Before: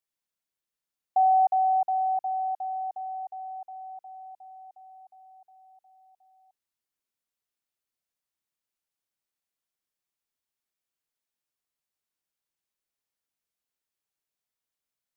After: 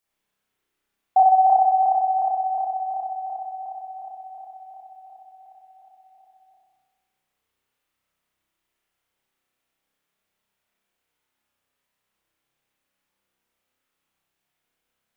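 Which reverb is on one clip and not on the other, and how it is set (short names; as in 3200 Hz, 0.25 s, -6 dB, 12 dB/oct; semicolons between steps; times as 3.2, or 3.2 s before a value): spring tank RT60 1.3 s, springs 31 ms, chirp 80 ms, DRR -7.5 dB; gain +6.5 dB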